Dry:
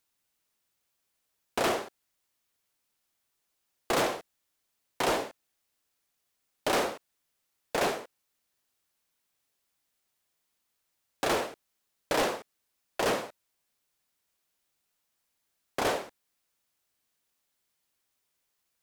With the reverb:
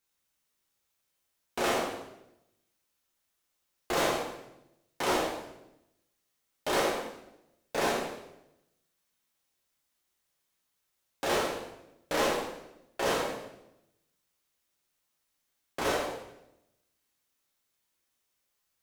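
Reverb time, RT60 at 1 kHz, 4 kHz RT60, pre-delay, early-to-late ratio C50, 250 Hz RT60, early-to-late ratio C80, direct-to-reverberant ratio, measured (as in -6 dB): 0.85 s, 0.80 s, 0.80 s, 7 ms, 3.0 dB, 1.1 s, 5.5 dB, -4.0 dB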